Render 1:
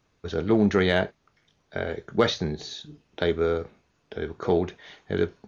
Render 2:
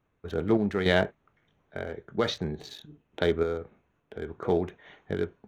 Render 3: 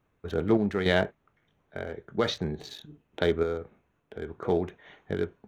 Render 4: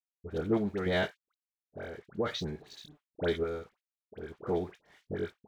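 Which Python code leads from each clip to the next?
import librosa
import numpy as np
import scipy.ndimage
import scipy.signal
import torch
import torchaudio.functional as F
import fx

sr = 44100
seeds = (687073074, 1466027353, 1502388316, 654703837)

y1 = fx.wiener(x, sr, points=9)
y1 = fx.tremolo_random(y1, sr, seeds[0], hz=3.5, depth_pct=55)
y2 = fx.rider(y1, sr, range_db=4, speed_s=2.0)
y2 = y2 * 10.0 ** (1.0 / 20.0)
y3 = np.sign(y2) * np.maximum(np.abs(y2) - 10.0 ** (-56.0 / 20.0), 0.0)
y3 = fx.dispersion(y3, sr, late='highs', ms=69.0, hz=1300.0)
y3 = y3 * 10.0 ** (-5.0 / 20.0)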